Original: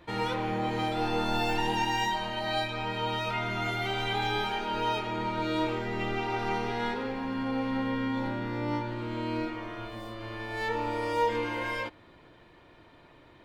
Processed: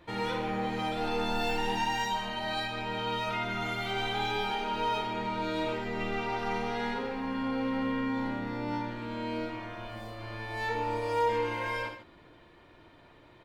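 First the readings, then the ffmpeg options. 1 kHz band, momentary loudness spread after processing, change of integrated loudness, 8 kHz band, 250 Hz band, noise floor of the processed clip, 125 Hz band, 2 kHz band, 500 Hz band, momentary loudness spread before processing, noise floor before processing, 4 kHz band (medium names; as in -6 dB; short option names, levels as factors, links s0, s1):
-1.0 dB, 7 LU, -1.5 dB, -1.0 dB, -1.5 dB, -57 dBFS, -4.0 dB, -1.5 dB, -1.0 dB, 6 LU, -56 dBFS, -1.5 dB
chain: -filter_complex "[0:a]asoftclip=type=tanh:threshold=0.112,asplit=2[s0][s1];[s1]aecho=0:1:55.39|142.9:0.501|0.251[s2];[s0][s2]amix=inputs=2:normalize=0,volume=0.794"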